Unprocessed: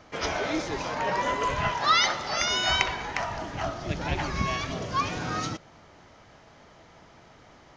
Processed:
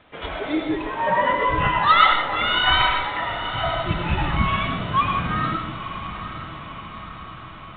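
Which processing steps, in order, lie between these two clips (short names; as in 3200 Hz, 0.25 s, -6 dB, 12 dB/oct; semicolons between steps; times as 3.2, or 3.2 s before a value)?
CVSD 32 kbps; spectral noise reduction 10 dB; in parallel at -10.5 dB: requantised 8-bit, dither triangular; on the sum: diffused feedback echo 0.929 s, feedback 60%, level -11 dB; on a send at -2.5 dB: reverb RT60 0.60 s, pre-delay 60 ms; on the sum: downsampling 8000 Hz; gain +5 dB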